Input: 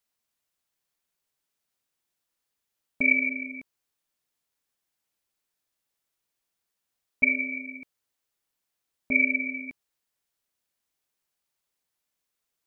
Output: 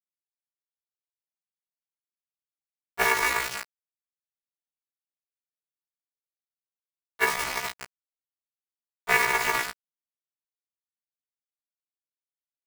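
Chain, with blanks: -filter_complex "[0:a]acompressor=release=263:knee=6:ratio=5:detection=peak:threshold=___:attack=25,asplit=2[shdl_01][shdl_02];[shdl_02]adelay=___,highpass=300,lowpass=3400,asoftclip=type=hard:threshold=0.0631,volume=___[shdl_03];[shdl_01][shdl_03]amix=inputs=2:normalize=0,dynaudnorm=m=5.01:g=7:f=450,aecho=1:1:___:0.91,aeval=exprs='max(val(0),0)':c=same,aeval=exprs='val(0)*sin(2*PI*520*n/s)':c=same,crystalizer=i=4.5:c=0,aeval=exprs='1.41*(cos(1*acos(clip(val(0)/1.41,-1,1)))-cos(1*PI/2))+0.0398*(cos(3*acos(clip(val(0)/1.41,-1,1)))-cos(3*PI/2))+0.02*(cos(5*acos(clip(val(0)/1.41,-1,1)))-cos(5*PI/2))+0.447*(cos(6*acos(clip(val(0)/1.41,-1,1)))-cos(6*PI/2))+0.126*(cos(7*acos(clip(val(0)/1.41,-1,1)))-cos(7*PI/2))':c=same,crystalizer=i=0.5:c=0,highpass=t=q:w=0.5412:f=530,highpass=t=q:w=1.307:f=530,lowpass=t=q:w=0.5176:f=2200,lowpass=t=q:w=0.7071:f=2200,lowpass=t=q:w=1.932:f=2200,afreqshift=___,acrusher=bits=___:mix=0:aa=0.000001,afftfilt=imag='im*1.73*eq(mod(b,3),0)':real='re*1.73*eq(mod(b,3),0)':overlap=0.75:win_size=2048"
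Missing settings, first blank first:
0.0316, 250, 0.398, 3.8, -96, 3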